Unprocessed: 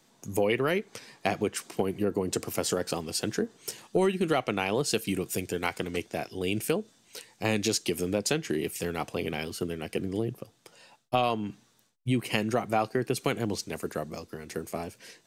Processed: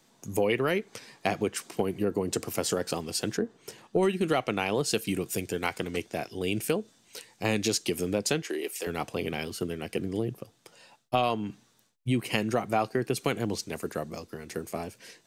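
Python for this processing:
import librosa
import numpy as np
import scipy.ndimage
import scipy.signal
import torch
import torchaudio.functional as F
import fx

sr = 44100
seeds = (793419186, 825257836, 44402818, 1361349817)

y = fx.high_shelf(x, sr, hz=3500.0, db=-11.5, at=(3.37, 4.03))
y = fx.highpass(y, sr, hz=340.0, slope=24, at=(8.42, 8.87))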